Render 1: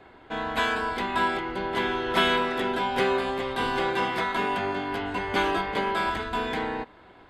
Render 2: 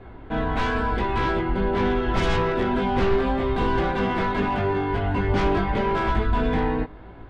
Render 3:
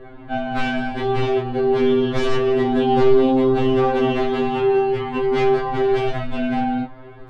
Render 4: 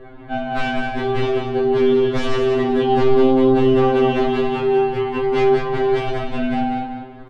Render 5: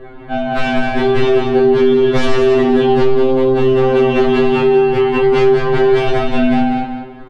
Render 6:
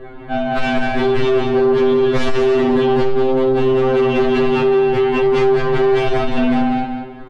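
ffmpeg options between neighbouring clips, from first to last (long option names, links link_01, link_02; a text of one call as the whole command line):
ffmpeg -i in.wav -af "flanger=delay=18:depth=2.3:speed=0.83,aeval=exprs='0.211*sin(PI/2*3.16*val(0)/0.211)':channel_layout=same,aemphasis=mode=reproduction:type=riaa,volume=-7.5dB" out.wav
ffmpeg -i in.wav -filter_complex "[0:a]asplit=2[link_01][link_02];[link_02]alimiter=limit=-16.5dB:level=0:latency=1,volume=-1.5dB[link_03];[link_01][link_03]amix=inputs=2:normalize=0,afftfilt=real='re*2.45*eq(mod(b,6),0)':imag='im*2.45*eq(mod(b,6),0)':win_size=2048:overlap=0.75" out.wav
ffmpeg -i in.wav -af "aecho=1:1:191|382|573:0.447|0.112|0.0279" out.wav
ffmpeg -i in.wav -filter_complex "[0:a]acompressor=threshold=-17dB:ratio=6,asplit=2[link_01][link_02];[link_02]adelay=21,volume=-7.5dB[link_03];[link_01][link_03]amix=inputs=2:normalize=0,dynaudnorm=framelen=100:gausssize=13:maxgain=4dB,volume=4.5dB" out.wav
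ffmpeg -i in.wav -af "asoftclip=type=tanh:threshold=-9dB" out.wav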